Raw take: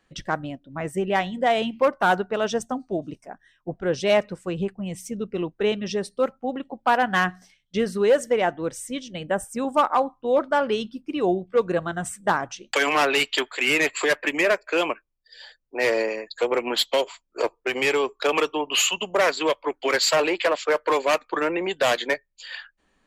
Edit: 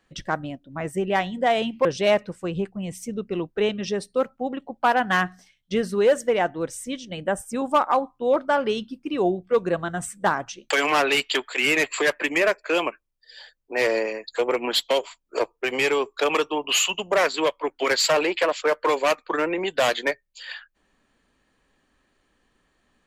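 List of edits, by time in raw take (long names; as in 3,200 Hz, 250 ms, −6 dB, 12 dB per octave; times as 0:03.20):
0:01.85–0:03.88: remove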